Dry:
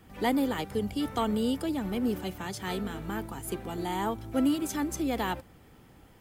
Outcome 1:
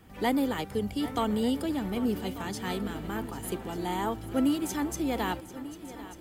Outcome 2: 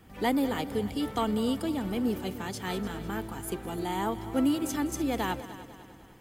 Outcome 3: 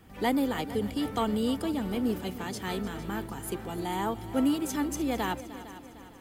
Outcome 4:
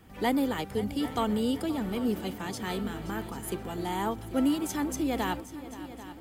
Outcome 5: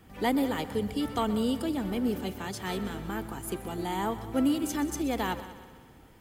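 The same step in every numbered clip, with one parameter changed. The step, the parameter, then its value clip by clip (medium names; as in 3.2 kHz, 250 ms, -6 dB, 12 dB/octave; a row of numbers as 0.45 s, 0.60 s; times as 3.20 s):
multi-head delay, time: 397 ms, 100 ms, 152 ms, 263 ms, 63 ms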